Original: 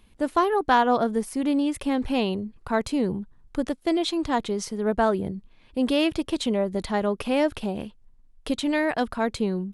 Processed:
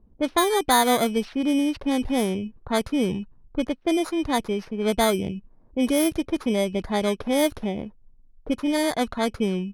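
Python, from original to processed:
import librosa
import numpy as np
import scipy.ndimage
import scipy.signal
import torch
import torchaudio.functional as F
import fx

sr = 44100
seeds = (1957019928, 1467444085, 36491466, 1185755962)

y = fx.bit_reversed(x, sr, seeds[0], block=16)
y = fx.env_lowpass(y, sr, base_hz=600.0, full_db=-17.5)
y = y * 10.0 ** (1.5 / 20.0)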